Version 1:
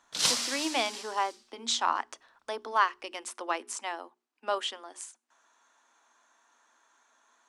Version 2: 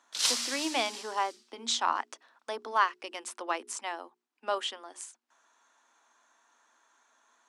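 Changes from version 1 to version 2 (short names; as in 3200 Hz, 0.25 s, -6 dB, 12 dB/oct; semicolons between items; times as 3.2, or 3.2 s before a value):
background: add HPF 1200 Hz 6 dB/oct; reverb: off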